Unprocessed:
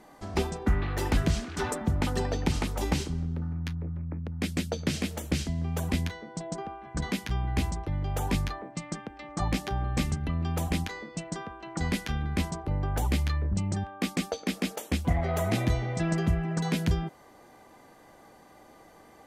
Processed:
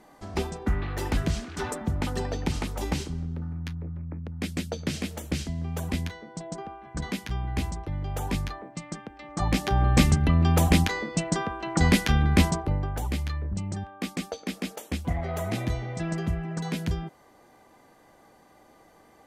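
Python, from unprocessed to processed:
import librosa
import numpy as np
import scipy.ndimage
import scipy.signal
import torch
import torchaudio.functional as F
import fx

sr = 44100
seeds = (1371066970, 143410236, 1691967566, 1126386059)

y = fx.gain(x, sr, db=fx.line((9.21, -1.0), (9.87, 9.0), (12.49, 9.0), (12.95, -2.5)))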